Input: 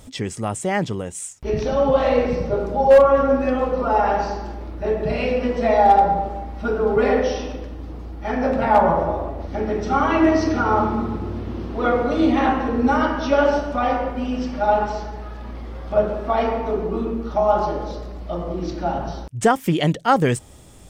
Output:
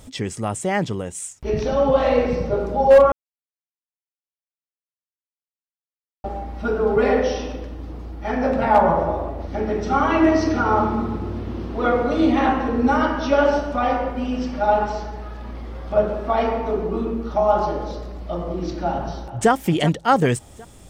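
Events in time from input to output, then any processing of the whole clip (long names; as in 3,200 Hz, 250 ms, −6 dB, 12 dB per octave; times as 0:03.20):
0:03.12–0:06.24: silence
0:18.89–0:19.50: delay throw 380 ms, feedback 45%, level −12 dB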